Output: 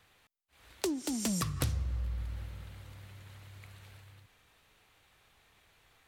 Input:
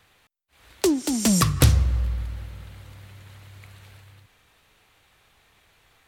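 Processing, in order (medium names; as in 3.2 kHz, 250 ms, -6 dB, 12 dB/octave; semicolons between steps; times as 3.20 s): compression 2.5:1, threshold -28 dBFS, peak gain reduction 11.5 dB; trim -5.5 dB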